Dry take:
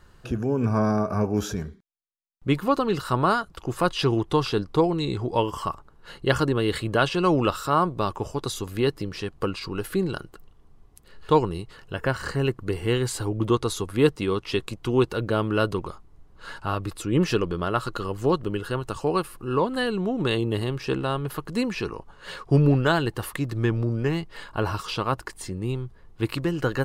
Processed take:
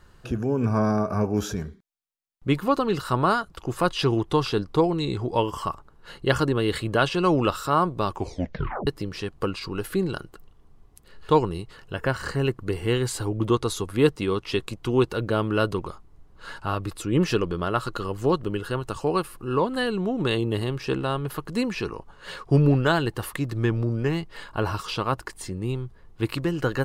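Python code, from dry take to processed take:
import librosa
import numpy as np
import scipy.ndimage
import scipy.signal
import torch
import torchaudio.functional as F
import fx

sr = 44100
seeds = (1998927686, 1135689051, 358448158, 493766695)

y = fx.edit(x, sr, fx.tape_stop(start_s=8.15, length_s=0.72), tone=tone)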